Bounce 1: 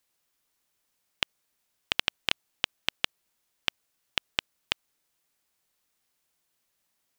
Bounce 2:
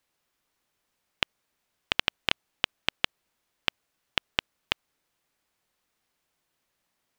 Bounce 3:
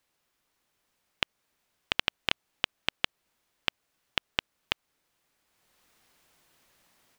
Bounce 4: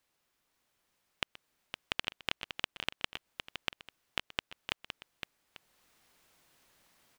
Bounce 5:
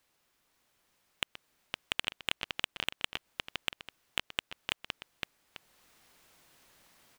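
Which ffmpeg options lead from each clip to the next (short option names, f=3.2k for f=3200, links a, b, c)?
-af "highshelf=f=4.4k:g=-9.5,volume=4dB"
-af "dynaudnorm=f=420:g=3:m=11dB,alimiter=limit=-4.5dB:level=0:latency=1:release=255,volume=1dB"
-filter_complex "[0:a]acompressor=threshold=-35dB:ratio=1.5,asplit=2[a][b];[b]aecho=0:1:126|513|843:0.106|0.398|0.119[c];[a][c]amix=inputs=2:normalize=0,volume=-2dB"
-af "asoftclip=type=hard:threshold=-16.5dB,volume=4.5dB"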